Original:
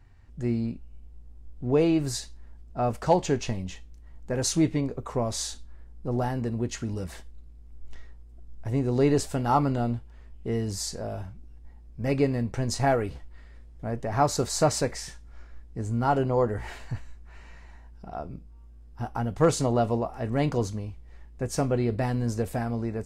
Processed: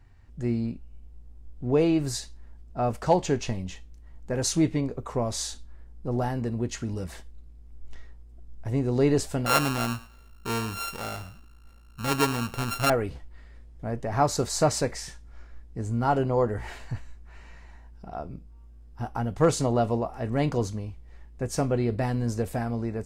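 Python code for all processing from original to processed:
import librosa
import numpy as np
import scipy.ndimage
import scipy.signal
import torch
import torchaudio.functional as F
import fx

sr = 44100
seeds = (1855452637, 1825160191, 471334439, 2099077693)

y = fx.chain(x, sr, fx.sample_sort(block=32),
    fx.low_shelf(hz=130.0, db=-5.5),
    fx.echo_thinned(ms=107, feedback_pct=25, hz=440.0, wet_db=-16), at=(9.46, 12.9))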